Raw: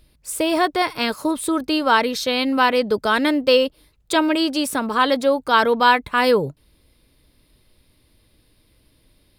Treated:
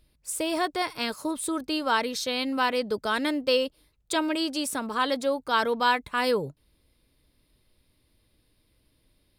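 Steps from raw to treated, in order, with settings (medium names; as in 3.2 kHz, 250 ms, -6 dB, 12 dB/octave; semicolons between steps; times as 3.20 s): dynamic bell 7.5 kHz, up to +6 dB, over -42 dBFS, Q 0.81; trim -8.5 dB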